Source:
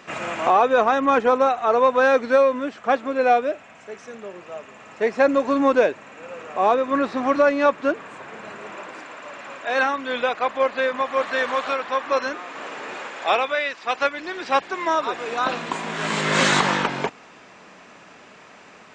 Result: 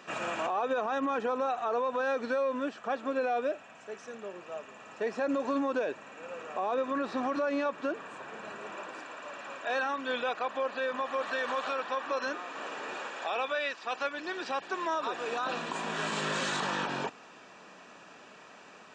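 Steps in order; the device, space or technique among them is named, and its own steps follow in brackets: PA system with an anti-feedback notch (high-pass 160 Hz 6 dB/octave; Butterworth band-stop 2.1 kHz, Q 7.8; peak limiter -18 dBFS, peak gain reduction 11.5 dB); trim -5 dB

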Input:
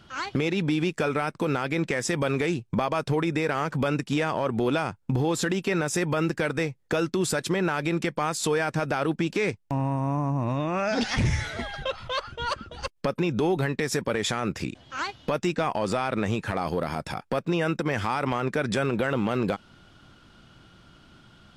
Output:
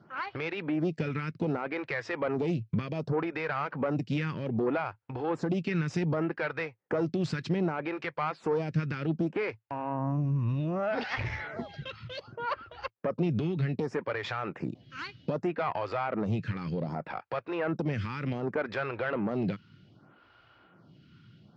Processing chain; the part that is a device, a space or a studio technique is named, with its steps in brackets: vibe pedal into a guitar amplifier (lamp-driven phase shifter 0.65 Hz; valve stage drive 20 dB, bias 0.45; cabinet simulation 100–4400 Hz, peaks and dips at 110 Hz +7 dB, 160 Hz +5 dB, 3.5 kHz -7 dB)

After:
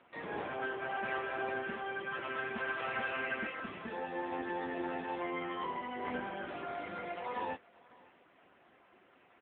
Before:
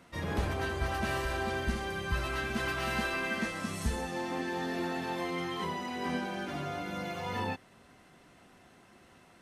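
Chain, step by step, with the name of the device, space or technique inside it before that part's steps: satellite phone (band-pass 310–3100 Hz; delay 560 ms -23.5 dB; AMR-NB 6.7 kbps 8 kHz)

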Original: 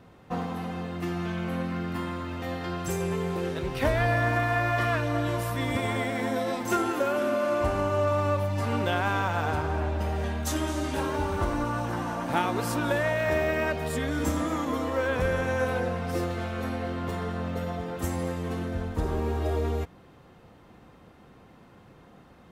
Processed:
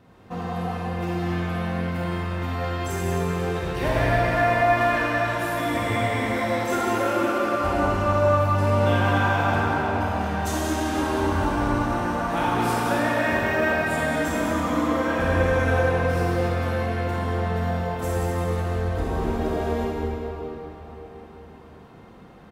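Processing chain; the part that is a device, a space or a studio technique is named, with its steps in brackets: cave (delay 185 ms -9 dB; reverberation RT60 4.4 s, pre-delay 26 ms, DRR -6 dB); trim -2.5 dB

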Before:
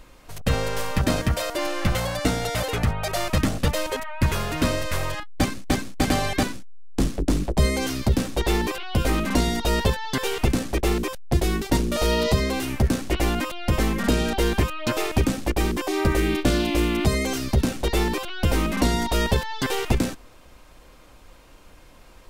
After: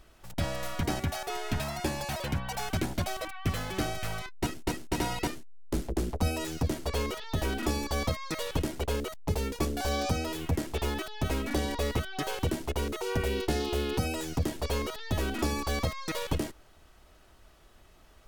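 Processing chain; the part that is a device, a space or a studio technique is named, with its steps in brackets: nightcore (tape speed +22%); trim -8.5 dB

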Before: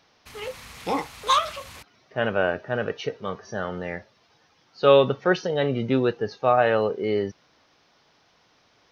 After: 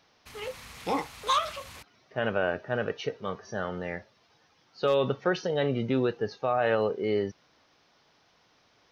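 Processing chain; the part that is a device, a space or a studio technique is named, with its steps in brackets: clipper into limiter (hard clipper -6 dBFS, distortion -33 dB; peak limiter -13 dBFS, peak gain reduction 7 dB); trim -3 dB

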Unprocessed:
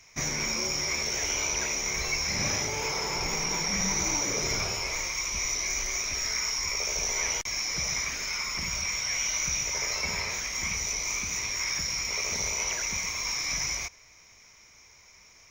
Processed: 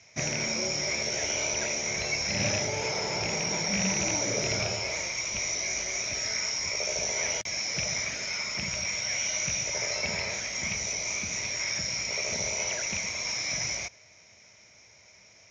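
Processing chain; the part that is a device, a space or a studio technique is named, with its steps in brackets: car door speaker with a rattle (rattle on loud lows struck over -33 dBFS, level -20 dBFS; cabinet simulation 87–6700 Hz, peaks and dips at 110 Hz +7 dB, 200 Hz +4 dB, 610 Hz +9 dB, 1.1 kHz -8 dB)

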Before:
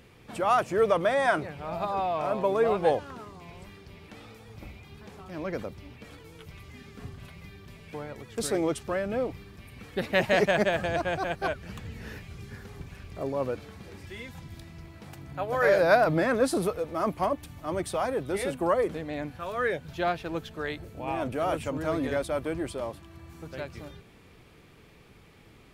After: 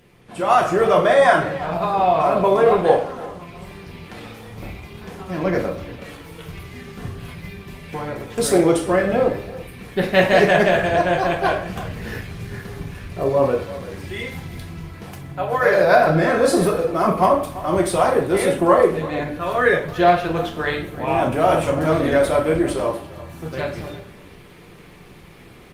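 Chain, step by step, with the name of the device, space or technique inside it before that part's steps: speakerphone in a meeting room (reverberation RT60 0.55 s, pre-delay 3 ms, DRR -1 dB; speakerphone echo 340 ms, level -16 dB; level rider gain up to 9.5 dB; Opus 32 kbps 48 kHz)

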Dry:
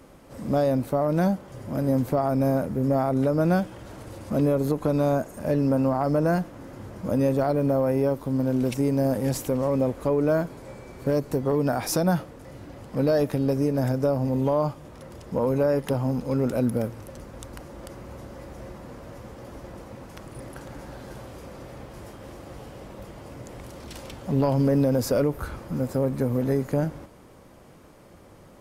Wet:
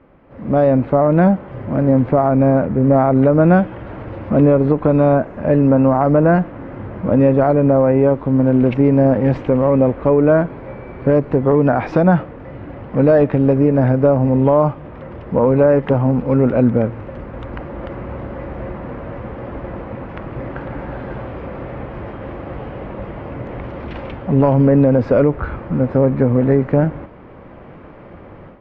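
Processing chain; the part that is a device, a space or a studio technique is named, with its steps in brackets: action camera in a waterproof case (low-pass 2.5 kHz 24 dB/octave; level rider gain up to 12.5 dB; AAC 128 kbps 44.1 kHz)

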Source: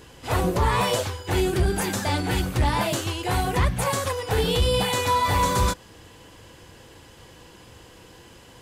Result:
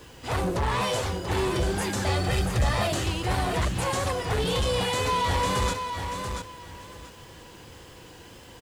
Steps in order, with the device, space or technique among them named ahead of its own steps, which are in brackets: compact cassette (saturation -22 dBFS, distortion -12 dB; low-pass 10 kHz 12 dB/octave; wow and flutter; white noise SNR 34 dB); 2.07–2.87 s: comb 1.6 ms, depth 70%; feedback delay 685 ms, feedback 22%, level -6.5 dB

